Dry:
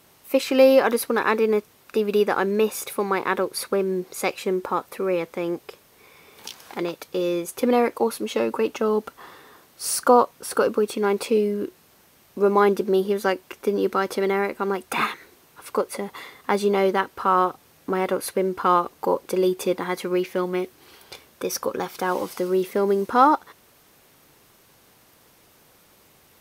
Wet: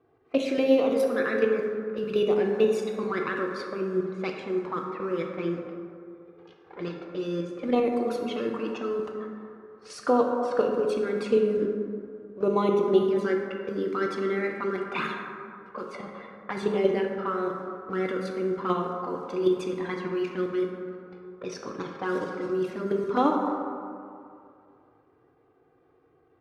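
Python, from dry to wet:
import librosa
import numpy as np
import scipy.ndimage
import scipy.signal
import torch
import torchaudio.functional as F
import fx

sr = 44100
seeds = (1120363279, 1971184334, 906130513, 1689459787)

y = fx.env_lowpass(x, sr, base_hz=900.0, full_db=-19.0)
y = scipy.signal.sosfilt(scipy.signal.butter(2, 94.0, 'highpass', fs=sr, output='sos'), y)
y = fx.peak_eq(y, sr, hz=870.0, db=-9.0, octaves=0.23)
y = fx.level_steps(y, sr, step_db=9)
y = fx.env_flanger(y, sr, rest_ms=2.6, full_db=-20.5)
y = fx.air_absorb(y, sr, metres=64.0)
y = fx.rev_plate(y, sr, seeds[0], rt60_s=2.4, hf_ratio=0.35, predelay_ms=0, drr_db=1.0)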